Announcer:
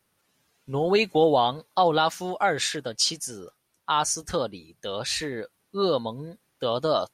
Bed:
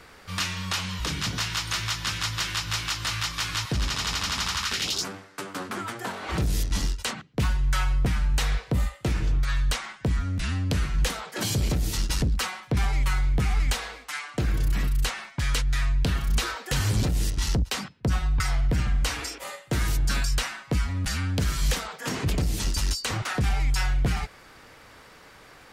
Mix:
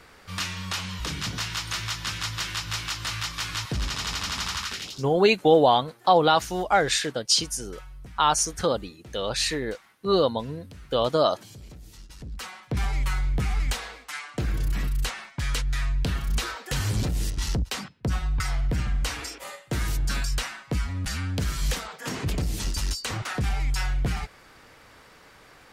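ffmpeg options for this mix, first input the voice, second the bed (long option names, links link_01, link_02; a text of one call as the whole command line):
ffmpeg -i stem1.wav -i stem2.wav -filter_complex "[0:a]adelay=4300,volume=2.5dB[link_01];[1:a]volume=16dB,afade=type=out:start_time=4.57:duration=0.47:silence=0.125893,afade=type=in:start_time=12.18:duration=0.66:silence=0.125893[link_02];[link_01][link_02]amix=inputs=2:normalize=0" out.wav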